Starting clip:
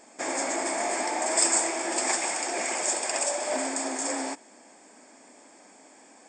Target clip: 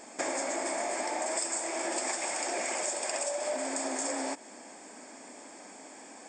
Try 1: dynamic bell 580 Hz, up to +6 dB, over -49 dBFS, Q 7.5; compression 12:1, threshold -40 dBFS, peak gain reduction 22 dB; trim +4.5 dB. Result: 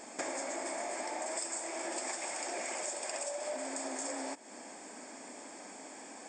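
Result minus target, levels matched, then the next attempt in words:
compression: peak gain reduction +5.5 dB
dynamic bell 580 Hz, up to +6 dB, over -49 dBFS, Q 7.5; compression 12:1, threshold -34 dBFS, peak gain reduction 16.5 dB; trim +4.5 dB

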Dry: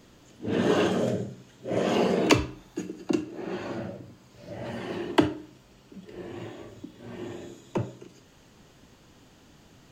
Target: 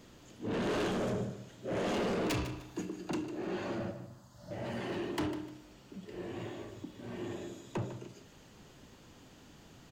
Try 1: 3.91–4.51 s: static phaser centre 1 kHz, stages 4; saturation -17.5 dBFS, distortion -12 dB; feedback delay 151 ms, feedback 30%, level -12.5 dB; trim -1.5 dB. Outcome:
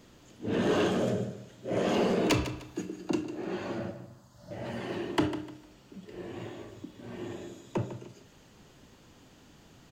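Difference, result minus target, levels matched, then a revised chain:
saturation: distortion -7 dB
3.91–4.51 s: static phaser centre 1 kHz, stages 4; saturation -29 dBFS, distortion -4 dB; feedback delay 151 ms, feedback 30%, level -12.5 dB; trim -1.5 dB

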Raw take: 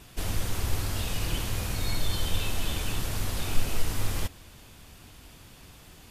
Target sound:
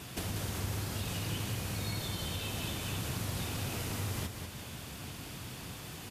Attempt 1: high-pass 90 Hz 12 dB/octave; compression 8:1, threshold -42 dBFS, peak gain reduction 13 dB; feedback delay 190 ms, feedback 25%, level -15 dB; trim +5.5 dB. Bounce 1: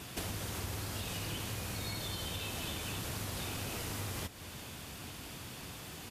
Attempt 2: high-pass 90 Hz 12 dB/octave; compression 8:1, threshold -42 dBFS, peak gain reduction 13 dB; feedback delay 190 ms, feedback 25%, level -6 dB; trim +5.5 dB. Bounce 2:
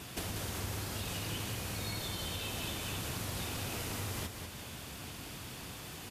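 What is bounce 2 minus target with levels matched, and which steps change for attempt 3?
125 Hz band -3.0 dB
add after compression: dynamic bell 130 Hz, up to +5 dB, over -58 dBFS, Q 0.8

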